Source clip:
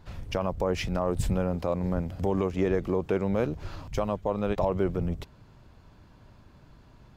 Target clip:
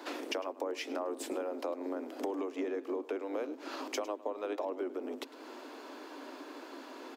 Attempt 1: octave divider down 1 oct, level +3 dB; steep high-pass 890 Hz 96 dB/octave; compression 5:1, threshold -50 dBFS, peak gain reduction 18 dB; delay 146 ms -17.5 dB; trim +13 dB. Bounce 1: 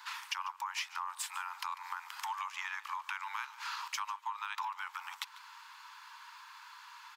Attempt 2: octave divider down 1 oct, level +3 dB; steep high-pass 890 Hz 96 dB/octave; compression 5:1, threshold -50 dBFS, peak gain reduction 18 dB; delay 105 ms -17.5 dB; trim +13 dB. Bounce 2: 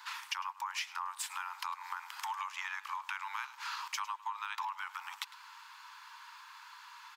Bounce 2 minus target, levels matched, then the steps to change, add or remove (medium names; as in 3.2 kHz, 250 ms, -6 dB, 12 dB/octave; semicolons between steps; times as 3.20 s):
1 kHz band +5.5 dB
change: steep high-pass 260 Hz 96 dB/octave